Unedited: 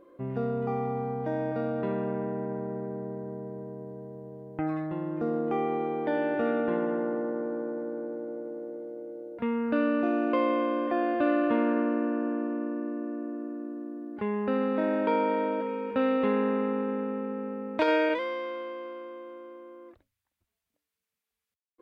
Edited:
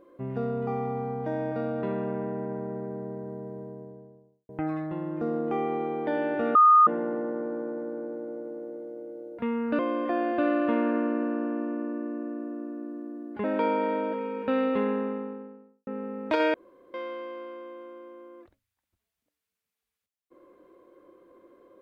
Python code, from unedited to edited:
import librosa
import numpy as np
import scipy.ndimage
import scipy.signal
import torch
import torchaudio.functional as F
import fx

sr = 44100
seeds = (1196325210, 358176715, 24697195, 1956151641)

y = fx.studio_fade_out(x, sr, start_s=3.52, length_s=0.97)
y = fx.studio_fade_out(y, sr, start_s=16.09, length_s=1.26)
y = fx.edit(y, sr, fx.bleep(start_s=6.55, length_s=0.32, hz=1230.0, db=-13.0),
    fx.cut(start_s=9.79, length_s=0.82),
    fx.cut(start_s=14.26, length_s=0.66),
    fx.room_tone_fill(start_s=18.02, length_s=0.4), tone=tone)